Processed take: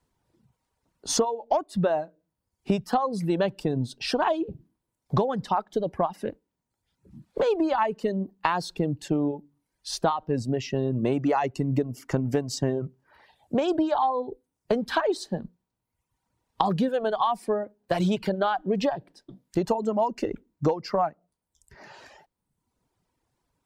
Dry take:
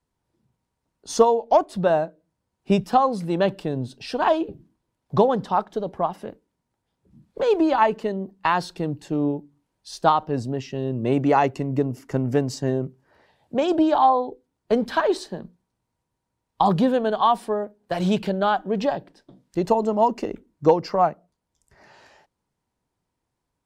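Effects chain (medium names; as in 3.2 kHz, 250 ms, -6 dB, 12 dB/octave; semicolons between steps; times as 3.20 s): reverb removal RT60 0.9 s; compression 6:1, threshold -27 dBFS, peak gain reduction 16 dB; trim +5.5 dB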